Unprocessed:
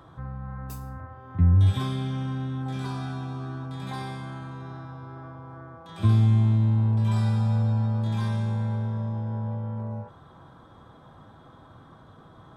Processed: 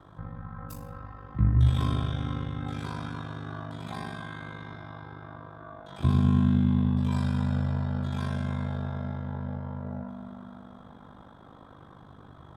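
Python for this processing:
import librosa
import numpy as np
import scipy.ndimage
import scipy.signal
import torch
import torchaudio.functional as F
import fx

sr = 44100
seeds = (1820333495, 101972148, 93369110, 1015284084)

y = fx.rev_spring(x, sr, rt60_s=3.8, pass_ms=(50,), chirp_ms=80, drr_db=0.5)
y = y * np.sin(2.0 * np.pi * 25.0 * np.arange(len(y)) / sr)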